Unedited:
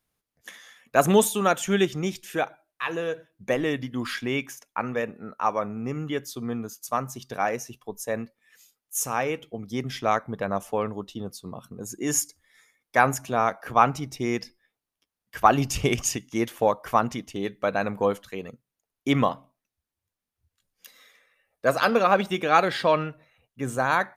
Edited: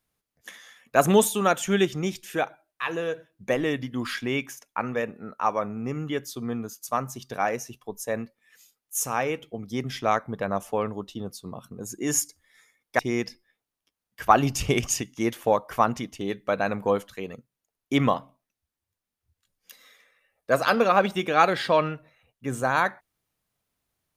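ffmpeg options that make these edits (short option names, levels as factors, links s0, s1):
-filter_complex "[0:a]asplit=2[s0][s1];[s0]atrim=end=12.992[s2];[s1]atrim=start=14.138[s3];[s2][s3]acrossfade=d=0.004:c1=hsin:c2=hsin"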